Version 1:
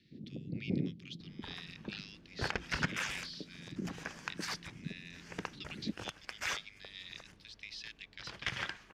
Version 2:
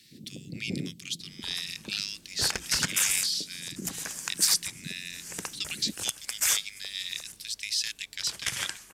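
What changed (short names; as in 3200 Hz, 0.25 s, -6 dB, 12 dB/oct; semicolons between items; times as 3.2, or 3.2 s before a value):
speech +7.0 dB; master: remove air absorption 270 m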